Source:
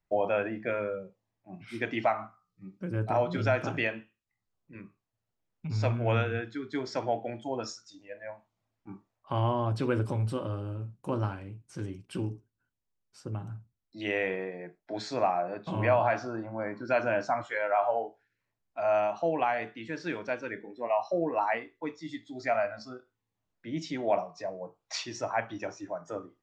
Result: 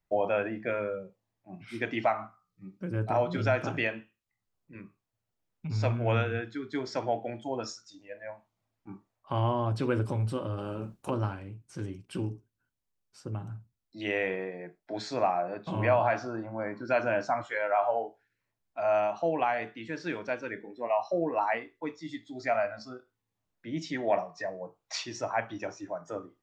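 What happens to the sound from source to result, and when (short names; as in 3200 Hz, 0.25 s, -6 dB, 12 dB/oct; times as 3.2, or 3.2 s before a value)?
10.57–11.09 spectral limiter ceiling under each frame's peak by 17 dB
23.92–24.63 bell 1800 Hz +14 dB 0.21 oct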